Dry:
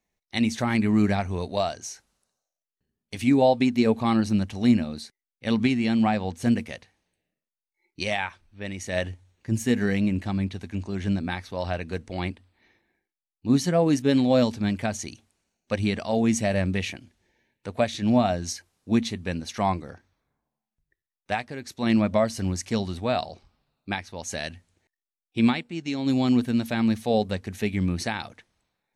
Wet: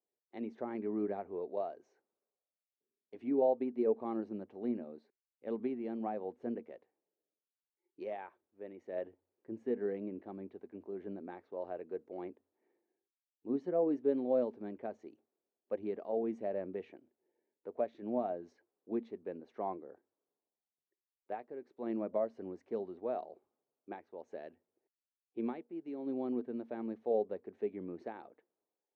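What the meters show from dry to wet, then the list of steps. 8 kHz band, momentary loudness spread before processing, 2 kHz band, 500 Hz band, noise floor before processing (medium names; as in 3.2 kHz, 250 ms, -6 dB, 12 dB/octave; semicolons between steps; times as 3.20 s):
under -40 dB, 14 LU, -25.5 dB, -8.0 dB, under -85 dBFS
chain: ladder band-pass 460 Hz, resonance 50%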